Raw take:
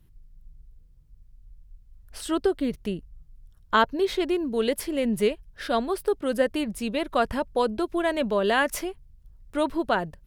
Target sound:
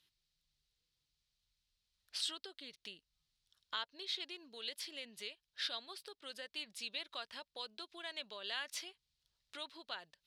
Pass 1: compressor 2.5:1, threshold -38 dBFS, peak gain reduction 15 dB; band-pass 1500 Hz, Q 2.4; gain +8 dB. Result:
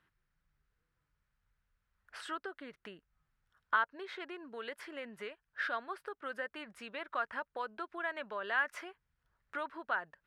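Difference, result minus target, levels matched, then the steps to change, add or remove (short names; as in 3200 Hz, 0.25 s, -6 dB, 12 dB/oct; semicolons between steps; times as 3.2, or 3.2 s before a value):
4000 Hz band -15.0 dB
change: band-pass 4000 Hz, Q 2.4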